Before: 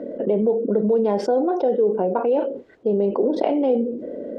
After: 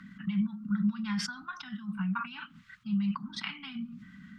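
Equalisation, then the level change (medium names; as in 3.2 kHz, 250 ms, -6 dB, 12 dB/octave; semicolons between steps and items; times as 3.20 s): Chebyshev band-stop 190–1200 Hz, order 4; bass shelf 140 Hz -9 dB; +5.0 dB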